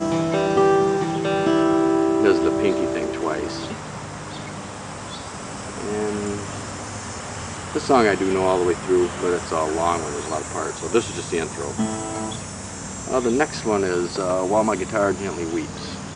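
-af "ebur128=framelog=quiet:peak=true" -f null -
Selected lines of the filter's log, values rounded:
Integrated loudness:
  I:         -22.6 LUFS
  Threshold: -32.8 LUFS
Loudness range:
  LRA:         9.2 LU
  Threshold: -43.3 LUFS
  LRA low:   -29.5 LUFS
  LRA high:  -20.3 LUFS
True peak:
  Peak:       -2.0 dBFS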